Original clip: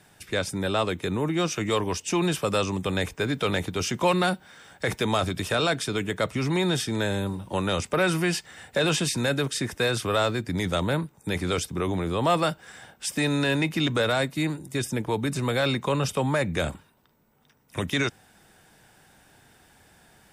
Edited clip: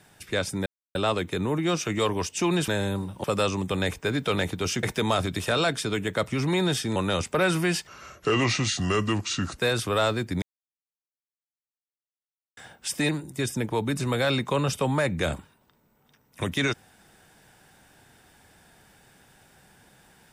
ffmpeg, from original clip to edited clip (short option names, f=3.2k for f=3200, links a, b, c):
-filter_complex "[0:a]asplit=11[a][b][c][d][e][f][g][h][i][j][k];[a]atrim=end=0.66,asetpts=PTS-STARTPTS,afade=t=out:st=0.656:d=0.004:c=hsin,apad=pad_dur=0.29[l];[b]atrim=start=0.66:end=2.392,asetpts=PTS-STARTPTS,afade=t=in:d=0.004:c=hsin[m];[c]atrim=start=6.988:end=7.552[n];[d]atrim=start=2.388:end=3.982[o];[e]atrim=start=4.858:end=6.992[p];[f]atrim=start=7.548:end=8.464[q];[g]atrim=start=8.46:end=9.76,asetpts=PTS-STARTPTS,asetrate=33516,aresample=44100,atrim=end_sample=75434,asetpts=PTS-STARTPTS[r];[h]atrim=start=9.756:end=10.6,asetpts=PTS-STARTPTS,afade=t=out:st=0.84:d=0.004:c=hsin[s];[i]atrim=start=10.6:end=12.75,asetpts=PTS-STARTPTS,volume=0[t];[j]atrim=start=12.75:end=13.272,asetpts=PTS-STARTPTS,afade=t=in:d=0.004:c=hsin[u];[k]atrim=start=14.448[v];[l][m]concat=n=2:v=0:a=1[w];[w][n]acrossfade=d=0.004:c1=hsin:c2=hsin[x];[x][o]acrossfade=d=0.004:c1=hsin:c2=hsin[y];[y][p]acrossfade=d=0.004:c1=hsin:c2=hsin[z];[z][q]acrossfade=d=0.004:c1=hsin:c2=hsin[aa];[aa][r]acrossfade=d=0.004:c1=hsin:c2=hsin[ab];[s][t][u]concat=n=3:v=0:a=1[ac];[ab][ac]acrossfade=d=0.004:c1=hsin:c2=hsin[ad];[ad][v]acrossfade=d=0.004:c1=hsin:c2=hsin"